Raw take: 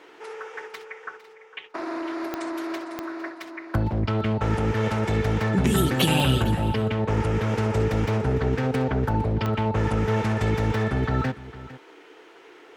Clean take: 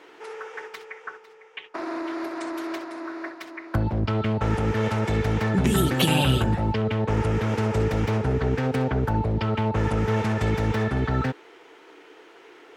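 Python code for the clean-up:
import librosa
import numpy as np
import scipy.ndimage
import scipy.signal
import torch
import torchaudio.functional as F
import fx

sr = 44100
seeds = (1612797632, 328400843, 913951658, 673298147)

y = fx.fix_declick_ar(x, sr, threshold=10.0)
y = fx.fix_echo_inverse(y, sr, delay_ms=455, level_db=-16.5)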